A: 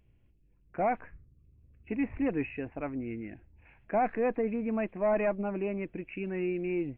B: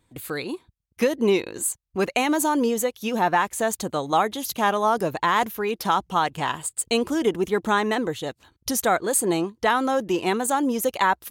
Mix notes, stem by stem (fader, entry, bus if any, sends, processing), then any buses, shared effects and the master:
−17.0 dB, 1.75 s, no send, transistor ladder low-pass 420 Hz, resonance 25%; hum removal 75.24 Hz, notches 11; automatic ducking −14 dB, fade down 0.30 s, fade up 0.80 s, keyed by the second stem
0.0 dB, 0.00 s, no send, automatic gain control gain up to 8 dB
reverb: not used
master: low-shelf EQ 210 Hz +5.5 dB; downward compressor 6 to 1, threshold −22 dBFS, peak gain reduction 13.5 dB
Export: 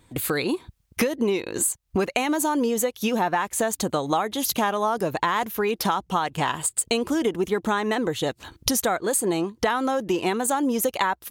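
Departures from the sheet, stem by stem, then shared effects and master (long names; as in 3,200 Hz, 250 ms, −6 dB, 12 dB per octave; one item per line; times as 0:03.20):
stem B 0.0 dB → +9.0 dB
master: missing low-shelf EQ 210 Hz +5.5 dB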